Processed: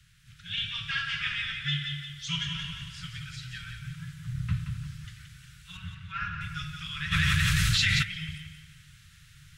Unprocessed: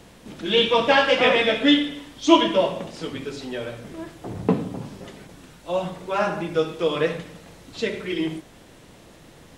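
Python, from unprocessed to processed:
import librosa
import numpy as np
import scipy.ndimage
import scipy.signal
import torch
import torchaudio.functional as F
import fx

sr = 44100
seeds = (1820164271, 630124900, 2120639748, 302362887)

y = fx.octave_divider(x, sr, octaves=1, level_db=-4.0)
y = scipy.signal.sosfilt(scipy.signal.cheby1(4, 1.0, [150.0, 1400.0], 'bandstop', fs=sr, output='sos'), y)
y = fx.peak_eq(y, sr, hz=370.0, db=3.5, octaves=2.3)
y = fx.lowpass(y, sr, hz=2900.0, slope=12, at=(5.77, 6.41))
y = fx.echo_feedback(y, sr, ms=175, feedback_pct=39, wet_db=-7.0)
y = fx.rider(y, sr, range_db=3, speed_s=0.5)
y = fx.peak_eq(y, sr, hz=140.0, db=12.5, octaves=0.47, at=(3.81, 4.51))
y = fx.env_flatten(y, sr, amount_pct=100, at=(7.11, 8.02), fade=0.02)
y = F.gain(torch.from_numpy(y), -7.0).numpy()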